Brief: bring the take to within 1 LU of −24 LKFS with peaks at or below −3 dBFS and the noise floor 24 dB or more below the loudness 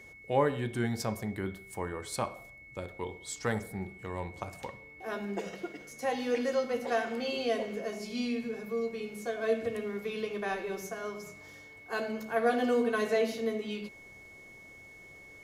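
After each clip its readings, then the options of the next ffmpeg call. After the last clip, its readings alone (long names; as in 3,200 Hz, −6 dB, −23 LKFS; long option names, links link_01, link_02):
interfering tone 2,200 Hz; level of the tone −50 dBFS; integrated loudness −33.5 LKFS; sample peak −13.5 dBFS; target loudness −24.0 LKFS
→ -af "bandreject=frequency=2200:width=30"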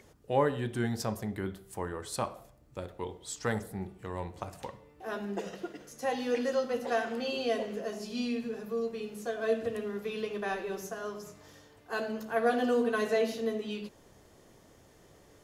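interfering tone none found; integrated loudness −34.0 LKFS; sample peak −13.5 dBFS; target loudness −24.0 LKFS
→ -af "volume=10dB"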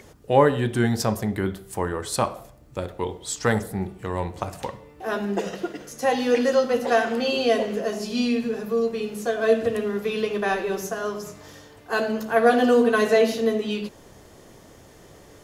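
integrated loudness −24.0 LKFS; sample peak −3.5 dBFS; background noise floor −49 dBFS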